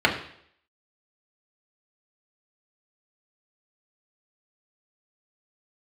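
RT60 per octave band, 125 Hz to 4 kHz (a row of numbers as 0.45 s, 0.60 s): 0.60 s, 0.65 s, 0.65 s, 0.65 s, 0.65 s, 0.65 s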